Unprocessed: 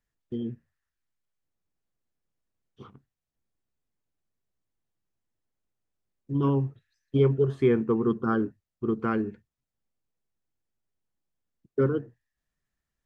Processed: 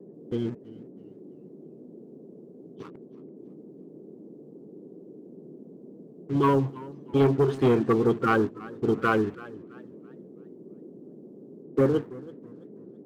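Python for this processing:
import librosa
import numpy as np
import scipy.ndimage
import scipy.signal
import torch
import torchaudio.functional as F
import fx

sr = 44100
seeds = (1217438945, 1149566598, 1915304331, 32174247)

y = fx.spec_quant(x, sr, step_db=30)
y = fx.leveller(y, sr, passes=2)
y = fx.dmg_noise_band(y, sr, seeds[0], low_hz=150.0, high_hz=420.0, level_db=-43.0)
y = fx.low_shelf(y, sr, hz=230.0, db=-8.0)
y = fx.echo_warbled(y, sr, ms=329, feedback_pct=36, rate_hz=2.8, cents=112, wet_db=-20)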